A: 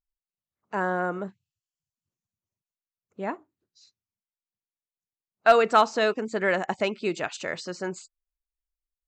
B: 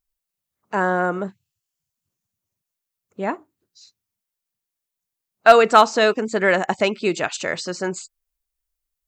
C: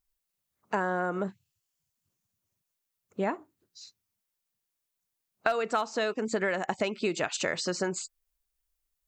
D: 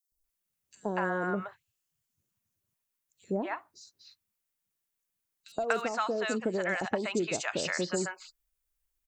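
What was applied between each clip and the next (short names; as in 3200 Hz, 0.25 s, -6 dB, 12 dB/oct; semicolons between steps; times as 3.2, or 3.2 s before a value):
high shelf 7600 Hz +7.5 dB; gain +6.5 dB
compressor 10:1, threshold -25 dBFS, peak gain reduction 19.5 dB
three bands offset in time highs, lows, mids 0.12/0.24 s, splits 740/4400 Hz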